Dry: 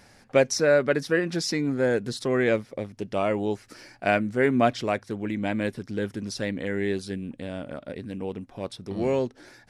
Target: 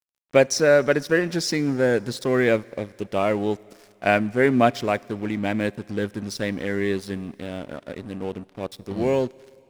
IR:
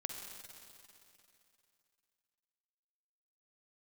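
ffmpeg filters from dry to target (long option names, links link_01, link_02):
-filter_complex "[0:a]aeval=exprs='sgn(val(0))*max(abs(val(0))-0.00596,0)':channel_layout=same,asplit=2[link_01][link_02];[1:a]atrim=start_sample=2205,highshelf=frequency=6800:gain=11[link_03];[link_02][link_03]afir=irnorm=-1:irlink=0,volume=-19dB[link_04];[link_01][link_04]amix=inputs=2:normalize=0,volume=3dB"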